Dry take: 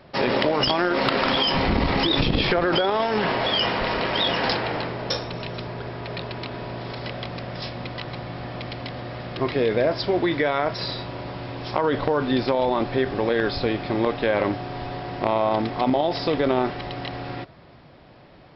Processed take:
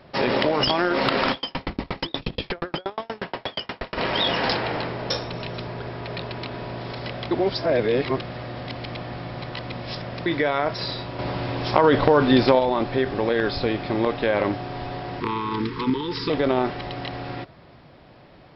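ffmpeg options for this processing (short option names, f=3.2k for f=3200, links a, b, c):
-filter_complex "[0:a]asplit=3[a][b][c];[a]afade=t=out:st=1.31:d=0.02[d];[b]aeval=exprs='val(0)*pow(10,-39*if(lt(mod(8.4*n/s,1),2*abs(8.4)/1000),1-mod(8.4*n/s,1)/(2*abs(8.4)/1000),(mod(8.4*n/s,1)-2*abs(8.4)/1000)/(1-2*abs(8.4)/1000))/20)':c=same,afade=t=in:st=1.31:d=0.02,afade=t=out:st=3.96:d=0.02[e];[c]afade=t=in:st=3.96:d=0.02[f];[d][e][f]amix=inputs=3:normalize=0,asettb=1/sr,asplit=3[g][h][i];[g]atrim=end=15.204[j];[h]atrim=start=15.2:end=16.3,asetpts=PTS-STARTPTS,afade=t=in:d=0.004:c=qsin,afade=t=out:st=1.096:d=0.004:c=qsin,asuperstop=centerf=660:order=20:qfactor=1.7[k];[i]atrim=start=16.296[l];[j][k]acrossfade=d=0.004:c1=hsin:c2=qsin[m];[m][l]acrossfade=d=0.004:c1=qsin:c2=hsin,asplit=5[n][o][p][q][r];[n]atrim=end=7.312[s];[o]atrim=start=7.308:end=10.262,asetpts=PTS-STARTPTS,areverse[t];[p]atrim=start=10.258:end=11.192[u];[q]atrim=start=11.188:end=12.592,asetpts=PTS-STARTPTS,volume=5.5dB[v];[r]atrim=start=12.588[w];[s][t]acrossfade=d=0.004:c1=hsin:c2=hsin[x];[x][u]acrossfade=d=0.004:c1=hsin:c2=hsin[y];[y][v]acrossfade=d=0.004:c1=hsin:c2=hsin[z];[z][w]acrossfade=d=0.004:c1=hsin:c2=hsin"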